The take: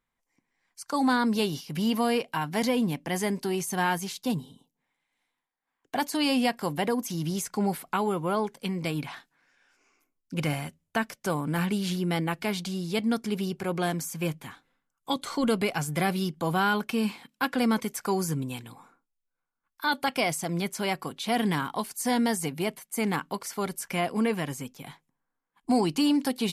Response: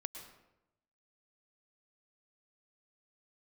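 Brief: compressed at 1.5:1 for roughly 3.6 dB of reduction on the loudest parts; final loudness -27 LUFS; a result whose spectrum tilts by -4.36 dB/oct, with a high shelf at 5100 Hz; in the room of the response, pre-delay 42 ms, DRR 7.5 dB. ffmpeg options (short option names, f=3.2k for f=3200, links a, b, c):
-filter_complex "[0:a]highshelf=f=5.1k:g=3,acompressor=threshold=-30dB:ratio=1.5,asplit=2[a][b];[1:a]atrim=start_sample=2205,adelay=42[c];[b][c]afir=irnorm=-1:irlink=0,volume=-5.5dB[d];[a][d]amix=inputs=2:normalize=0,volume=3.5dB"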